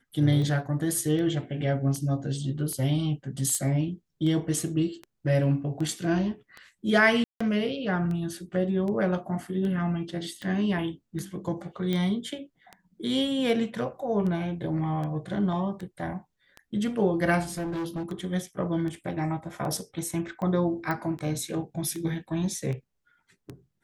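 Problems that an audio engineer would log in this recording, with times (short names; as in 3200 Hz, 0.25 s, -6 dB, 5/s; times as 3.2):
tick 78 rpm -25 dBFS
3.55 pop -17 dBFS
7.24–7.41 gap 0.165 s
11.93 pop -17 dBFS
17.5–18.05 clipped -28.5 dBFS
20.91 pop -17 dBFS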